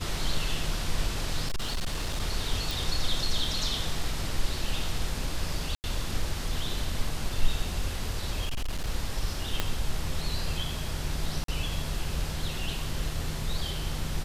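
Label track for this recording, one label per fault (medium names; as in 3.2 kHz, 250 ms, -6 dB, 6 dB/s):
1.460000	2.200000	clipped -25.5 dBFS
2.710000	2.710000	pop
5.750000	5.840000	dropout 89 ms
8.450000	8.890000	clipped -26.5 dBFS
9.600000	9.600000	pop -11 dBFS
11.440000	11.480000	dropout 43 ms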